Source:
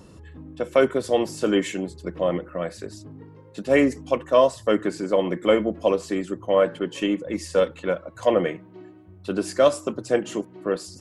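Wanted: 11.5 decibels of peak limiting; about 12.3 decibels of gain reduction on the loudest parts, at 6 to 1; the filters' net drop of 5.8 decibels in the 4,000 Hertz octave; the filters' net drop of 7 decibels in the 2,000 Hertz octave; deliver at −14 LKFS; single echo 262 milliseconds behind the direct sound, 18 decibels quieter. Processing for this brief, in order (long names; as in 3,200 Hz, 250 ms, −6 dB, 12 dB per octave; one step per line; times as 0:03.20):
parametric band 2,000 Hz −8 dB
parametric band 4,000 Hz −4.5 dB
downward compressor 6 to 1, threshold −27 dBFS
brickwall limiter −26.5 dBFS
single-tap delay 262 ms −18 dB
level +24 dB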